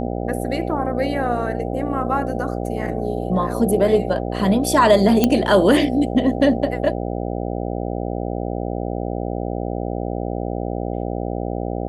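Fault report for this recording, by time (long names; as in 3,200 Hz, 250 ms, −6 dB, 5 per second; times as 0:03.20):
mains buzz 60 Hz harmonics 13 −25 dBFS
0:05.24: click −2 dBFS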